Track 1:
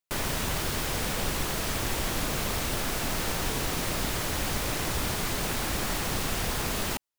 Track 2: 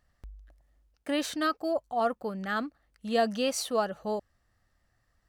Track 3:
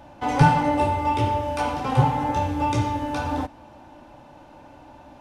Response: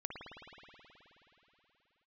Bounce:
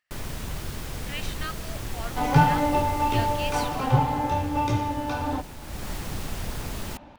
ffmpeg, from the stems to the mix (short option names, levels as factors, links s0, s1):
-filter_complex "[0:a]lowshelf=f=220:g=9.5,volume=0.891,afade=t=out:st=3.58:d=0.38:silence=0.421697,afade=t=in:st=5.6:d=0.29:silence=0.375837,asplit=2[s0][s1];[s1]volume=0.188[s2];[1:a]highpass=f=1400:p=1,equalizer=f=2400:t=o:w=1.1:g=13.5,volume=0.398[s3];[2:a]lowpass=6500,adelay=1950,volume=0.794[s4];[3:a]atrim=start_sample=2205[s5];[s2][s5]afir=irnorm=-1:irlink=0[s6];[s0][s3][s4][s6]amix=inputs=4:normalize=0"